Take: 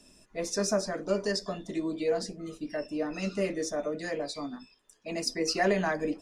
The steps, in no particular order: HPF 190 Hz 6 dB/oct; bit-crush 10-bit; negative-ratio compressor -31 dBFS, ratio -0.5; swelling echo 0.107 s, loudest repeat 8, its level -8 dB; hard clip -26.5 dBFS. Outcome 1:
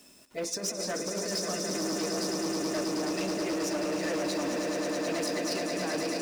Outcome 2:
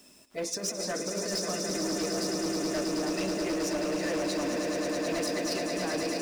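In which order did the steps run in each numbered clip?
bit-crush > negative-ratio compressor > swelling echo > hard clip > HPF; negative-ratio compressor > HPF > bit-crush > swelling echo > hard clip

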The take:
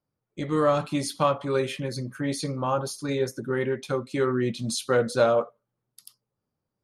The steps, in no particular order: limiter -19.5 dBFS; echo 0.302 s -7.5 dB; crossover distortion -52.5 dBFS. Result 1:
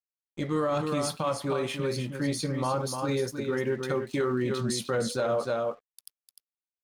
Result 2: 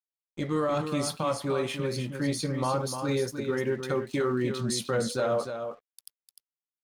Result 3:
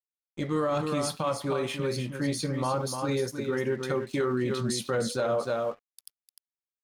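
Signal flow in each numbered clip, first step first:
crossover distortion > echo > limiter; crossover distortion > limiter > echo; echo > crossover distortion > limiter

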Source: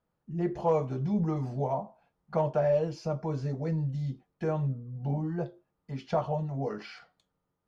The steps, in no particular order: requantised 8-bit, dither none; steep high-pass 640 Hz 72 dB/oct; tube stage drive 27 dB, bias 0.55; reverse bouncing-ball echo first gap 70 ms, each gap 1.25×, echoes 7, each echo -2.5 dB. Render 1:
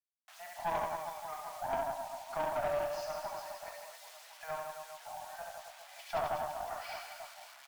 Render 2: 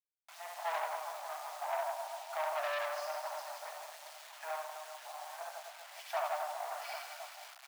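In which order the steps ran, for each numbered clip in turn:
reverse bouncing-ball echo > requantised > steep high-pass > tube stage; reverse bouncing-ball echo > tube stage > requantised > steep high-pass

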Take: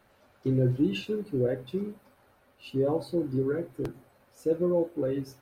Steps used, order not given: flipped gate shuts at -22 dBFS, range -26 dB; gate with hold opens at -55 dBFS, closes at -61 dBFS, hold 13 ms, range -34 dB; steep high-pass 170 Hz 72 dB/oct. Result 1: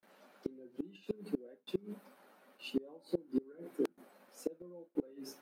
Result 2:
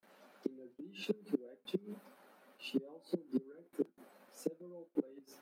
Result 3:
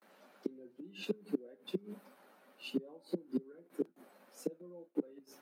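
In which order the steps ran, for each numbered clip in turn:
steep high-pass > flipped gate > gate with hold; flipped gate > steep high-pass > gate with hold; flipped gate > gate with hold > steep high-pass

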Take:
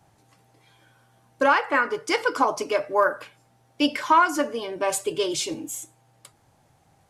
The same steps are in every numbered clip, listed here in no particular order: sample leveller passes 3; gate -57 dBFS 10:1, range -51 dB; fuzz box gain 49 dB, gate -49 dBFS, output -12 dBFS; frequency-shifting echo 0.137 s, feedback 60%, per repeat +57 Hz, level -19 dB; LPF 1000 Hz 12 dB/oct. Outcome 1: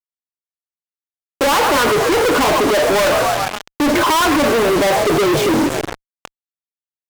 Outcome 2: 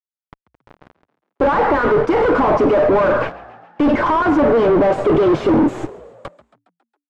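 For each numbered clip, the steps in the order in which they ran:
gate > frequency-shifting echo > LPF > sample leveller > fuzz box; fuzz box > sample leveller > gate > frequency-shifting echo > LPF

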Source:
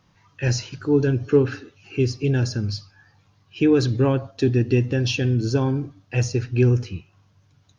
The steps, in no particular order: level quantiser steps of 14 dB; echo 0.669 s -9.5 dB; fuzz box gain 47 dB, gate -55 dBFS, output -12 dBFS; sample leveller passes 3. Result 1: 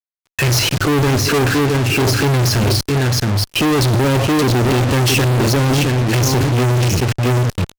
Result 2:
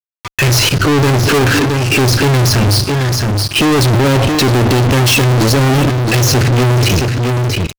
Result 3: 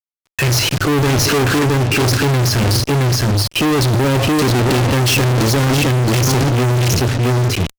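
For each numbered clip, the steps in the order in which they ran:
echo > level quantiser > sample leveller > fuzz box; level quantiser > fuzz box > echo > sample leveller; level quantiser > sample leveller > echo > fuzz box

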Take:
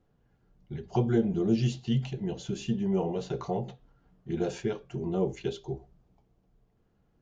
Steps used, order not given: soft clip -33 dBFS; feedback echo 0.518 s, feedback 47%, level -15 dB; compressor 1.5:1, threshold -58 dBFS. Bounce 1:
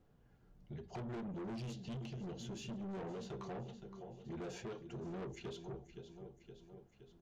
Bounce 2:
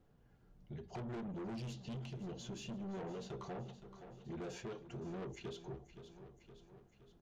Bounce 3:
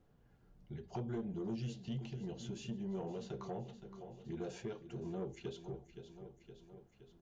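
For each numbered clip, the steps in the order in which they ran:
feedback echo > soft clip > compressor; soft clip > feedback echo > compressor; feedback echo > compressor > soft clip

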